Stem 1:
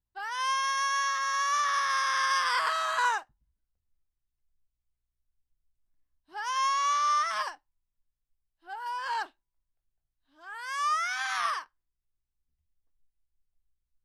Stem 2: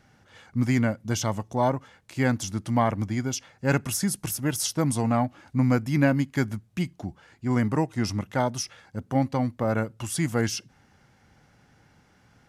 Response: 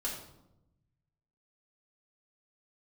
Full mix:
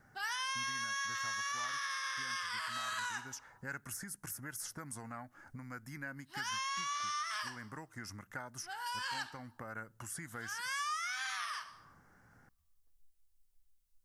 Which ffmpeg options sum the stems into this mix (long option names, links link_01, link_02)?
-filter_complex "[0:a]highshelf=frequency=4300:gain=11,volume=-1dB,asplit=2[link_01][link_02];[link_02]volume=-10.5dB[link_03];[1:a]highshelf=frequency=2000:width_type=q:width=3:gain=-8.5,acompressor=threshold=-25dB:ratio=6,aexciter=amount=1.5:drive=4.5:freq=2000,volume=-6.5dB[link_04];[2:a]atrim=start_sample=2205[link_05];[link_03][link_05]afir=irnorm=-1:irlink=0[link_06];[link_01][link_04][link_06]amix=inputs=3:normalize=0,acrossover=split=1400|2800[link_07][link_08][link_09];[link_07]acompressor=threshold=-49dB:ratio=4[link_10];[link_08]acompressor=threshold=-35dB:ratio=4[link_11];[link_09]acompressor=threshold=-42dB:ratio=4[link_12];[link_10][link_11][link_12]amix=inputs=3:normalize=0,alimiter=level_in=5.5dB:limit=-24dB:level=0:latency=1:release=273,volume=-5.5dB"